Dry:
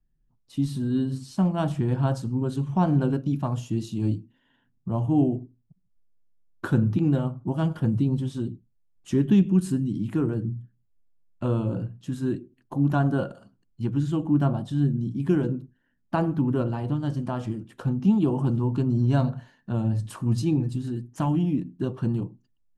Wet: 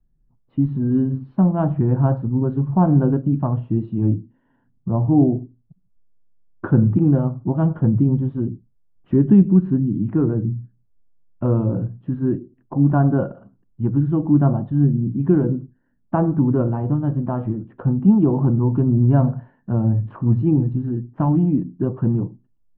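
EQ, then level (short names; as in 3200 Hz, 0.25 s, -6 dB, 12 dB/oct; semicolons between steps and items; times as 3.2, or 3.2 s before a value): LPF 1300 Hz 12 dB/oct; air absorption 470 m; +7.0 dB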